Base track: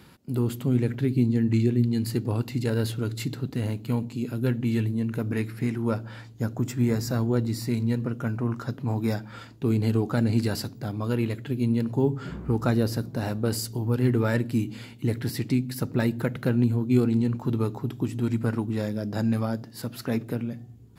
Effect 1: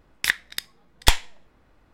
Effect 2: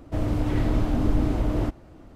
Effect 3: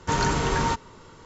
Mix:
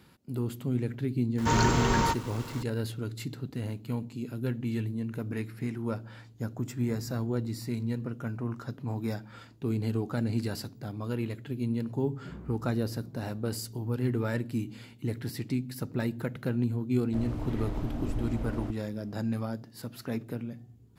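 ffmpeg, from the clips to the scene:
-filter_complex "[0:a]volume=-6.5dB[a];[3:a]aeval=exprs='val(0)+0.5*0.0126*sgn(val(0))':c=same,atrim=end=1.25,asetpts=PTS-STARTPTS,volume=-2.5dB,afade=t=in:d=0.004:c=hsin,afade=t=out:st=1.246:d=0.004:c=hsin,adelay=1380[b];[2:a]atrim=end=2.15,asetpts=PTS-STARTPTS,volume=-11dB,afade=t=in:d=0.004:c=hsin,afade=t=out:st=2.146:d=0.004:c=hsin,adelay=17010[c];[a][b][c]amix=inputs=3:normalize=0"

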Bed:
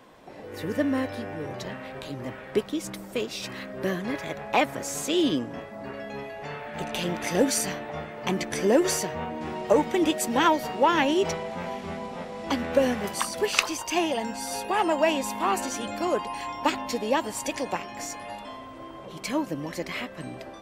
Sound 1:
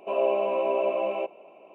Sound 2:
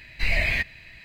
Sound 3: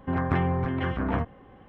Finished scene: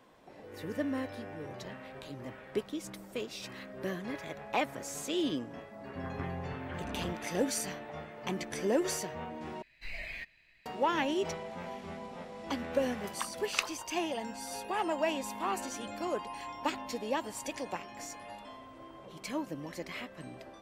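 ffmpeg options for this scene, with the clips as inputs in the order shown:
-filter_complex "[0:a]volume=-8.5dB[a];[2:a]equalizer=f=81:w=0.64:g=-10[b];[a]asplit=2[c][d];[c]atrim=end=9.624[e];[b]atrim=end=1.04,asetpts=PTS-STARTPTS,volume=-17.5dB[f];[d]atrim=start=10.656[g];[3:a]atrim=end=1.68,asetpts=PTS-STARTPTS,volume=-14dB,afade=t=in:d=0.004:c=hsin,afade=t=out:st=1.676:d=0.004:c=hsin,adelay=5880[h];[e][f]acrossfade=d=0.004:c1=hsin:c2=hsin[i];[i][g]acrossfade=d=0.004:c1=hsin:c2=hsin[j];[j][h]amix=inputs=2:normalize=0"

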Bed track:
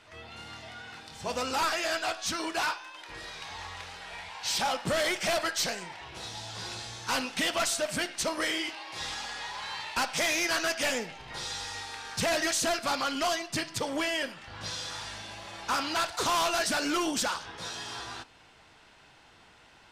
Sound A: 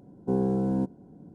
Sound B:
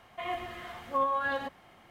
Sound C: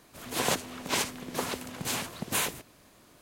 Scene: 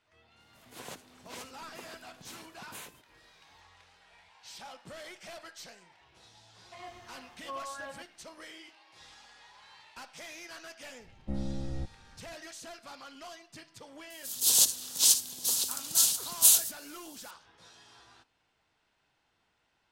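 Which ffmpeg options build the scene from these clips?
-filter_complex "[3:a]asplit=2[a][b];[0:a]volume=-18dB[c];[1:a]afreqshift=-190[d];[b]aexciter=amount=14.8:drive=6.6:freq=3.3k[e];[a]atrim=end=3.21,asetpts=PTS-STARTPTS,volume=-17dB,afade=t=in:d=0.004:c=hsin,afade=t=out:st=3.206:d=0.004:c=hsin,adelay=400[f];[2:a]atrim=end=1.9,asetpts=PTS-STARTPTS,volume=-12dB,afade=t=in:d=0.004:c=hsin,afade=t=out:st=1.896:d=0.004:c=hsin,adelay=6540[g];[d]atrim=end=1.34,asetpts=PTS-STARTPTS,volume=-7.5dB,afade=t=in:d=0.004:c=hsin,afade=t=out:st=1.336:d=0.004:c=hsin,adelay=11000[h];[e]atrim=end=3.21,asetpts=PTS-STARTPTS,volume=-15.5dB,afade=t=in:d=0.004:c=hsin,afade=t=out:st=3.206:d=0.004:c=hsin,adelay=14100[i];[c][f][g][h][i]amix=inputs=5:normalize=0"

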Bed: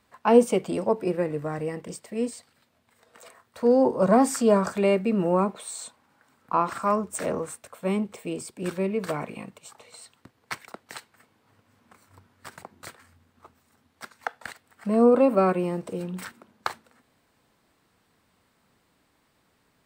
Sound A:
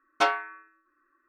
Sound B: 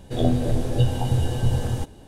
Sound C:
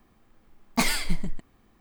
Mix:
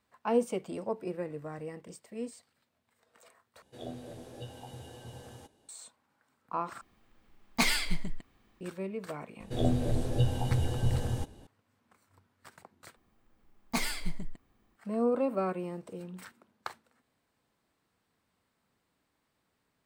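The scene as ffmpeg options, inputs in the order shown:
-filter_complex "[2:a]asplit=2[a][b];[3:a]asplit=2[c][d];[0:a]volume=-10.5dB[e];[a]highpass=f=370:p=1[f];[c]equalizer=f=3k:w=0.66:g=5.5[g];[e]asplit=4[h][i][j][k];[h]atrim=end=3.624[l];[f]atrim=end=2.07,asetpts=PTS-STARTPTS,volume=-16dB[m];[i]atrim=start=5.686:end=6.814[n];[g]atrim=end=1.8,asetpts=PTS-STARTPTS,volume=-5.5dB[o];[j]atrim=start=8.606:end=12.964[p];[d]atrim=end=1.8,asetpts=PTS-STARTPTS,volume=-8dB[q];[k]atrim=start=14.756[r];[b]atrim=end=2.07,asetpts=PTS-STARTPTS,volume=-7dB,afade=t=in:d=0.004:c=hsin,afade=t=out:st=2.066:d=0.004:c=hsin,adelay=9400[s];[l][m]acrossfade=d=0.004:c1=hsin:c2=hsin[t];[t][n]acrossfade=d=0.004:c1=hsin:c2=hsin[u];[u][o]acrossfade=d=0.004:c1=hsin:c2=hsin[v];[v][p]acrossfade=d=0.004:c1=hsin:c2=hsin[w];[w][q]acrossfade=d=0.004:c1=hsin:c2=hsin[x];[x][r]acrossfade=d=0.004:c1=hsin:c2=hsin[y];[y][s]amix=inputs=2:normalize=0"

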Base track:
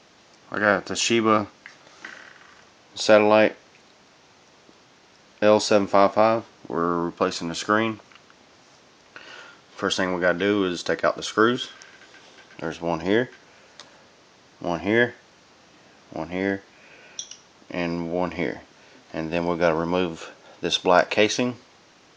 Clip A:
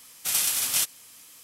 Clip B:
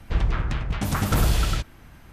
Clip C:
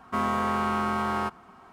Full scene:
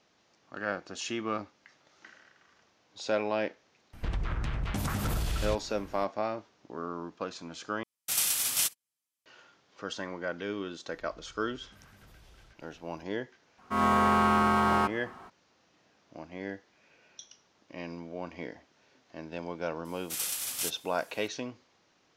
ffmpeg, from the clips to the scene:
-filter_complex "[2:a]asplit=2[a][b];[1:a]asplit=2[c][d];[0:a]volume=-14dB[e];[a]acompressor=threshold=-24dB:ratio=6:attack=3.2:release=140:knee=1:detection=peak[f];[c]agate=range=-36dB:threshold=-42dB:ratio=16:release=100:detection=peak[g];[b]acompressor=threshold=-39dB:ratio=6:attack=3.2:release=140:knee=1:detection=peak[h];[3:a]dynaudnorm=f=130:g=3:m=11dB[i];[e]asplit=2[j][k];[j]atrim=end=7.834[l];[g]atrim=end=1.43,asetpts=PTS-STARTPTS,volume=-3.5dB[m];[k]atrim=start=9.256[n];[f]atrim=end=2.12,asetpts=PTS-STARTPTS,volume=-3dB,afade=t=in:d=0.004:c=hsin,afade=t=out:st=2.116:d=0.004:c=hsin,adelay=173313S[o];[h]atrim=end=2.12,asetpts=PTS-STARTPTS,volume=-17dB,afade=t=in:d=0.004:c=hsin,afade=t=out:st=2.116:d=0.004:c=hsin,adelay=10910[p];[i]atrim=end=1.72,asetpts=PTS-STARTPTS,volume=-8dB,afade=t=in:d=0.004:c=hsin,afade=t=out:st=1.716:d=0.004:c=hsin,adelay=13580[q];[d]atrim=end=1.43,asetpts=PTS-STARTPTS,volume=-9dB,afade=t=in:d=0.004:c=hsin,afade=t=out:st=1.426:d=0.004:c=hsin,adelay=19850[r];[l][m]acrossfade=d=0.004:c1=hsin:c2=hsin[s];[s][n]acrossfade=d=0.004:c1=hsin:c2=hsin[t];[t][o][p][q][r]amix=inputs=5:normalize=0"

